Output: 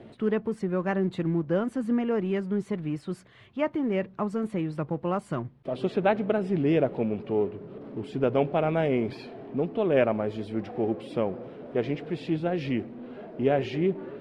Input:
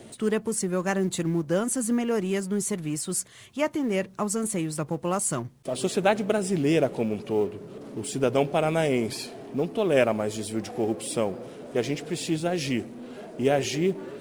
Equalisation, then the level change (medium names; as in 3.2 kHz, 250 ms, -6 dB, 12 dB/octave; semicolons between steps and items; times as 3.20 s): distance through air 380 m; 0.0 dB